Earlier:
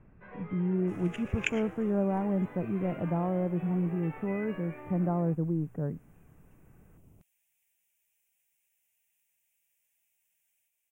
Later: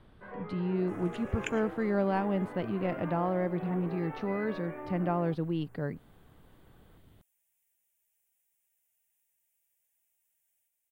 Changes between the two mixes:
speech: remove Gaussian blur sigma 7.9 samples; first sound +5.0 dB; master: add fifteen-band EQ 160 Hz -4 dB, 2500 Hz -9 dB, 6300 Hz -3 dB

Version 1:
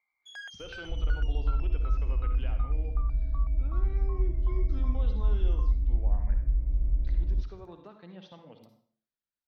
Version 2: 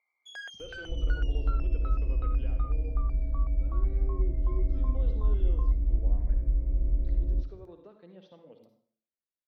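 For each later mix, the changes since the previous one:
speech -9.5 dB; master: add EQ curve 120 Hz 0 dB, 500 Hz +11 dB, 800 Hz +1 dB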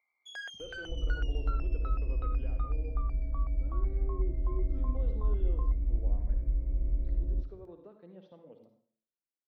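speech: add high shelf 2100 Hz -10.5 dB; second sound -3.5 dB

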